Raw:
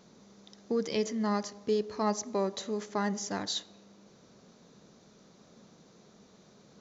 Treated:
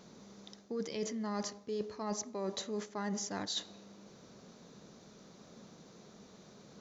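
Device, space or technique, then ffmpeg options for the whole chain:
compression on the reversed sound: -af "areverse,acompressor=threshold=-36dB:ratio=12,areverse,volume=2dB"

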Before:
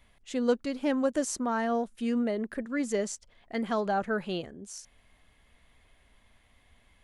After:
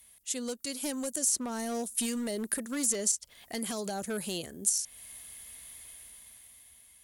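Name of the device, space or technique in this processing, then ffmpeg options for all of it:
FM broadcast chain: -filter_complex "[0:a]asettb=1/sr,asplit=3[link_01][link_02][link_03];[link_01]atrim=end=0.604[link_04];[link_02]atrim=start=0.6:end=1.19,asetpts=PTS-STARTPTS,afade=type=in:duration=0.004:curve=qsin,afade=type=out:start_time=0.586:duration=0.004:curve=qsin,highshelf=frequency=5100:gain=5[link_05];[link_03]atrim=start=1.186[link_06];[link_04][link_05]acrossfade=duration=0.004:curve1=hsin:curve2=qsin[link_07];[link_07][link_06]acrossfade=duration=0.004:curve1=qsin:curve2=hsin,highpass=45,dynaudnorm=framelen=210:gausssize=11:maxgain=10.5dB,acrossover=split=620|4500[link_08][link_09][link_10];[link_08]acompressor=threshold=-21dB:ratio=4[link_11];[link_09]acompressor=threshold=-34dB:ratio=4[link_12];[link_10]acompressor=threshold=-41dB:ratio=4[link_13];[link_11][link_12][link_13]amix=inputs=3:normalize=0,aemphasis=mode=production:type=75fm,alimiter=limit=-17.5dB:level=0:latency=1:release=320,asoftclip=type=hard:threshold=-21.5dB,lowpass=frequency=15000:width=0.5412,lowpass=frequency=15000:width=1.3066,aemphasis=mode=production:type=75fm,volume=-7dB"

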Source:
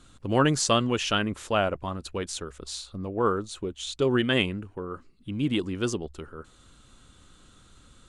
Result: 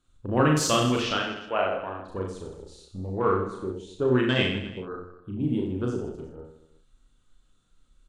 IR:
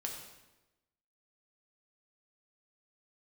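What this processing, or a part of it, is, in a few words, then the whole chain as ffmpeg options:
slapback doubling: -filter_complex "[0:a]afwtdn=0.02,asplit=3[link_01][link_02][link_03];[link_02]adelay=32,volume=-7dB[link_04];[link_03]adelay=63,volume=-10dB[link_05];[link_01][link_04][link_05]amix=inputs=3:normalize=0,asettb=1/sr,asplit=3[link_06][link_07][link_08];[link_06]atrim=end=1.134[link_09];[link_07]atrim=start=1.13:end=2.08,asetpts=PTS-STARTPTS,afade=type=in:duration=0.004:curve=qsin,afade=type=out:start_time=0.946:duration=0.004:curve=qsin,acrossover=split=310 4200:gain=0.2 1 0.0794[link_10][link_11][link_12];[link_10][link_11][link_12]amix=inputs=3:normalize=0[link_13];[link_08]atrim=start=2.076[link_14];[link_09][link_13]acrossfade=duration=0.004:curve1=hsin:curve2=qsin[link_15];[link_15][link_14]acrossfade=duration=0.004:curve1=qsin:curve2=hsin,aecho=1:1:40|92|159.6|247.5|361.7:0.631|0.398|0.251|0.158|0.1,volume=-2.5dB"

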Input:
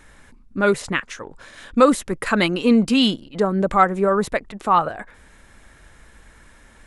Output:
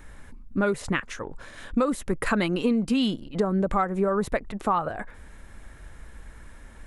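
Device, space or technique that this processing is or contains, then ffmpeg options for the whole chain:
ASMR close-microphone chain: -af "lowshelf=frequency=110:gain=7,equalizer=frequency=6400:width=0.35:gain=-6,acompressor=threshold=-20dB:ratio=8,highshelf=frequency=7000:gain=4.5"

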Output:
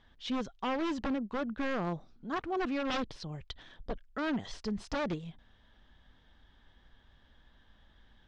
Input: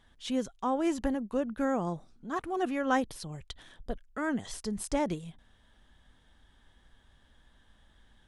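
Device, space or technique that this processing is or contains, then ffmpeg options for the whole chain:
synthesiser wavefolder: -af "aeval=exprs='0.0447*(abs(mod(val(0)/0.0447+3,4)-2)-1)':channel_layout=same,lowpass=frequency=5300:width=0.5412,lowpass=frequency=5300:width=1.3066"

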